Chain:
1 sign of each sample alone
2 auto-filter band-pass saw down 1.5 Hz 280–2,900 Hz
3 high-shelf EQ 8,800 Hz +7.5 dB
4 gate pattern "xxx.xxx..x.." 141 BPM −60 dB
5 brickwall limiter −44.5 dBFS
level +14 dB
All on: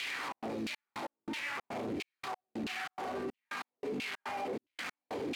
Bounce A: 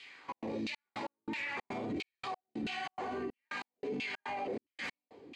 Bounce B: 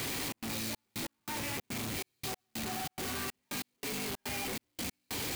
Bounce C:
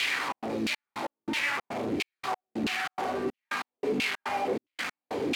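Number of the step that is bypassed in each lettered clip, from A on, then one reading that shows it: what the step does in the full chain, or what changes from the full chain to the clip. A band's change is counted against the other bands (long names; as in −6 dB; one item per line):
1, distortion level −1 dB
2, 8 kHz band +15.0 dB
5, average gain reduction 7.5 dB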